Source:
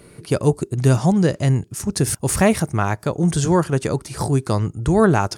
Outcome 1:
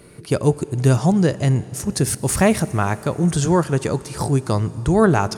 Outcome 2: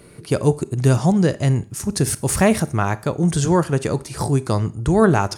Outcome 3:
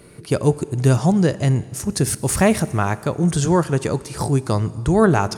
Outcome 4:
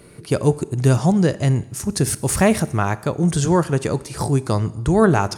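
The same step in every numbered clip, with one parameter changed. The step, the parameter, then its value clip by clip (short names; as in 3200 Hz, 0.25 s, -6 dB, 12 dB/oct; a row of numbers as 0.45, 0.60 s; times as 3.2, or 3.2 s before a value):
Schroeder reverb, RT60: 4.6, 0.42, 2.1, 0.92 s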